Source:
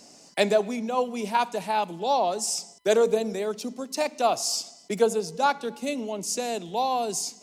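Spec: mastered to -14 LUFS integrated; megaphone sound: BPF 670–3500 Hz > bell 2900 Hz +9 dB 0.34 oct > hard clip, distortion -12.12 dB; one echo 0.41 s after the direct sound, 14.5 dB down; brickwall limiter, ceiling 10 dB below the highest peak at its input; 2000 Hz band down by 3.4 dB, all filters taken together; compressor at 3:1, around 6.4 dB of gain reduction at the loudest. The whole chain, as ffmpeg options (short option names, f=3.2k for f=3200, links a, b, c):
-af "equalizer=f=2k:t=o:g=-7,acompressor=threshold=-25dB:ratio=3,alimiter=level_in=1dB:limit=-24dB:level=0:latency=1,volume=-1dB,highpass=670,lowpass=3.5k,equalizer=f=2.9k:t=o:w=0.34:g=9,aecho=1:1:410:0.188,asoftclip=type=hard:threshold=-34.5dB,volume=26.5dB"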